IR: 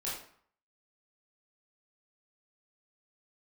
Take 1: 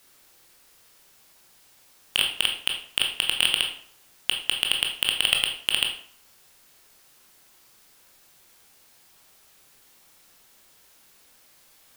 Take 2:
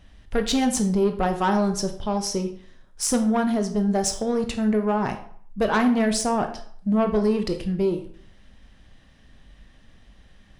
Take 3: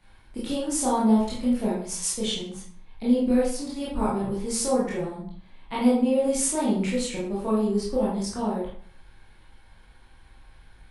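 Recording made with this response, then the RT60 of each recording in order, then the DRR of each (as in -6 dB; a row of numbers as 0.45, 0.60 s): 3; 0.55, 0.55, 0.55 s; 1.5, 6.5, -7.5 dB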